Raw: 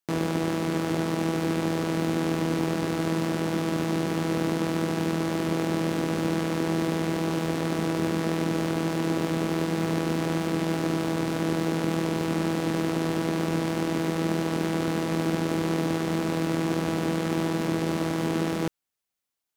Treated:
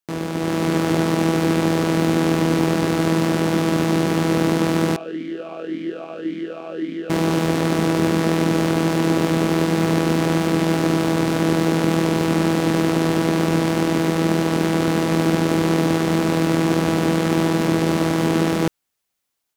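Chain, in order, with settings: AGC gain up to 8 dB; 4.96–7.1 vowel sweep a-i 1.8 Hz

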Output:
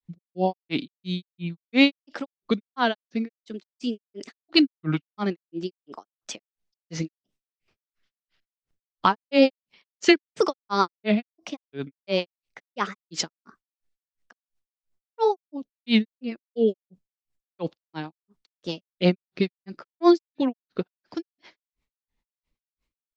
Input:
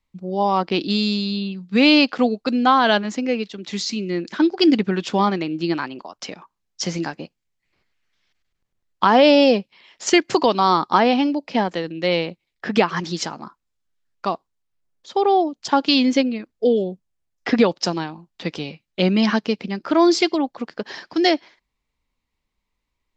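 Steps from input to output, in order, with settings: grains 0.192 s, grains 2.9/s, pitch spread up and down by 3 st; rotary speaker horn 1.1 Hz, later 8 Hz, at 2.1; gain +1.5 dB

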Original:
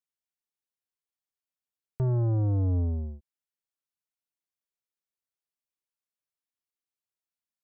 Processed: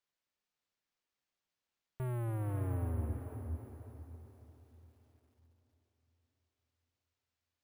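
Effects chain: in parallel at +2.5 dB: limiter -33 dBFS, peak gain reduction 9.5 dB; on the sum: careless resampling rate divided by 4×, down none, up hold; soft clip -28.5 dBFS, distortion -15 dB; diffused feedback echo 0.514 s, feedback 40%, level -6.5 dB; lo-fi delay 0.274 s, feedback 55%, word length 10-bit, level -13.5 dB; gain -7 dB

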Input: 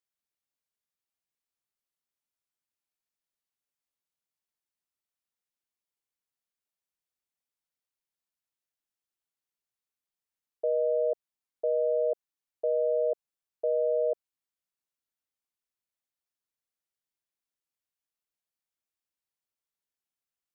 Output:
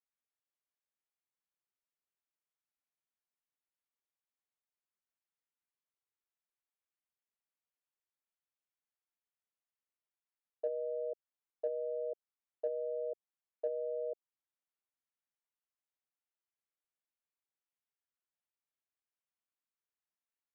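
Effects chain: Wiener smoothing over 9 samples; treble ducked by the level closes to 430 Hz, closed at -24.5 dBFS; low shelf 410 Hz -10 dB; gate -30 dBFS, range -7 dB; gain +5 dB

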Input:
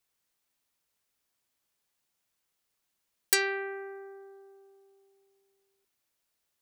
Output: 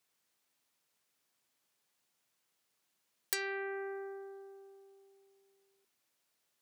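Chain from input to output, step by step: HPF 120 Hz 12 dB/oct; high shelf 12000 Hz -4.5 dB; compressor 3:1, threshold -38 dBFS, peak gain reduction 13.5 dB; gain +2 dB

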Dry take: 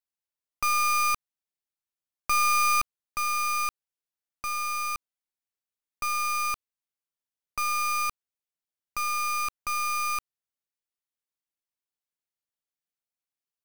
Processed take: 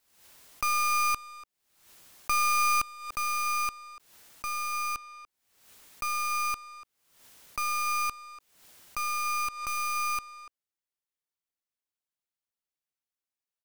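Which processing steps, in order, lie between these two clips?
speakerphone echo 0.29 s, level -11 dB; backwards sustainer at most 77 dB/s; gain -2.5 dB

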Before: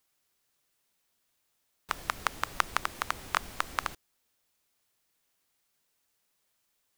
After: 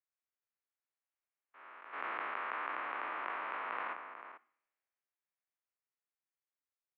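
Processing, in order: stepped spectrum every 0.4 s; Doppler pass-by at 2.95, 14 m/s, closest 14 m; on a send at -21 dB: reverb RT60 0.70 s, pre-delay 47 ms; on the sum: mistuned SSB -68 Hz 380–2500 Hz; low shelf 500 Hz -8 dB; outdoor echo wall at 76 m, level -8 dB; harmonic-percussive split percussive -9 dB; in parallel at -1 dB: negative-ratio compressor -52 dBFS, ratio -0.5; on the sum: three-band expander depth 40%; gain +5.5 dB

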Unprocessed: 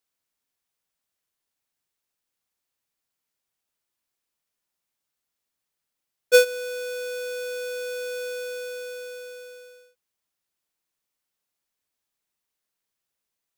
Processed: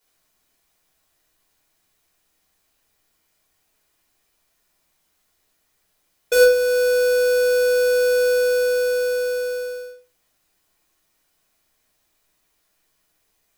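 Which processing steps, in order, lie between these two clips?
in parallel at +2 dB: compressor, threshold -41 dBFS, peak gain reduction 25.5 dB; on the sum: overloaded stage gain 19.5 dB; shoebox room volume 230 m³, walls furnished, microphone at 4.8 m

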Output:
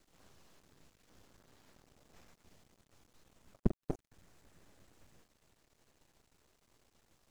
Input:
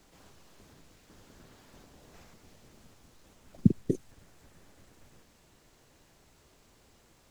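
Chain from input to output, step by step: half-wave rectifier; gain -5 dB

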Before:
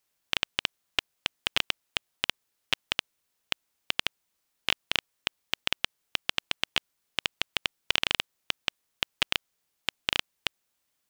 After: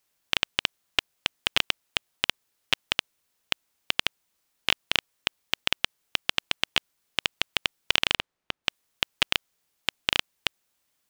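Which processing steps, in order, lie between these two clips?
8.14–8.64 LPF 2200 Hz -> 1200 Hz 6 dB/oct; gain +3 dB

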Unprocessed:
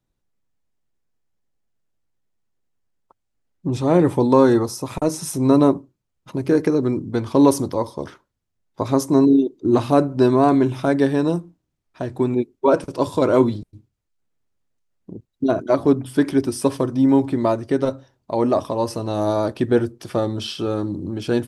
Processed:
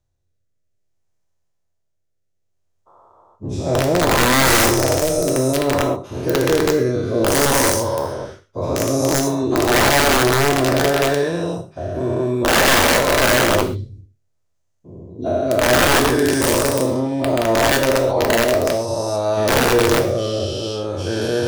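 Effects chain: spectral dilation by 0.48 s; fifteen-band EQ 100 Hz +10 dB, 250 Hz -7 dB, 630 Hz +6 dB, 6300 Hz +6 dB; rotary speaker horn 0.6 Hz; wrapped overs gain 4.5 dB; non-linear reverb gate 0.16 s falling, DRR 5 dB; gain -5 dB

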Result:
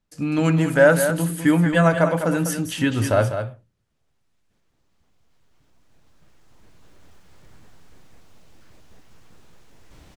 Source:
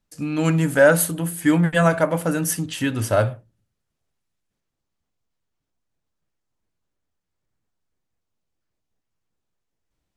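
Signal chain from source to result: recorder AGC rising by 7.8 dB/s; high shelf 7700 Hz -9 dB; on a send: echo 0.201 s -8.5 dB

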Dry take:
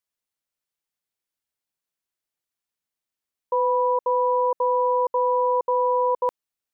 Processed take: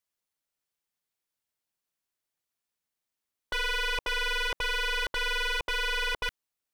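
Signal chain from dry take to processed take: tracing distortion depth 0.19 ms; wavefolder -23.5 dBFS

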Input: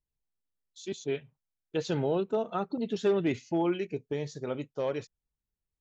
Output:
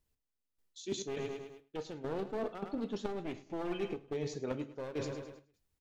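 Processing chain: one-sided fold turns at -29.5 dBFS; on a send: feedback echo 0.105 s, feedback 50%, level -14.5 dB; on the sum: step gate "x...xxx.xx" 103 bpm -12 dB; de-hum 139.7 Hz, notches 2; reverse; compressor 5:1, threshold -46 dBFS, peak gain reduction 19 dB; reverse; bell 330 Hz +4 dB 1.2 oct; non-linear reverb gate 90 ms falling, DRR 10 dB; gain +8 dB

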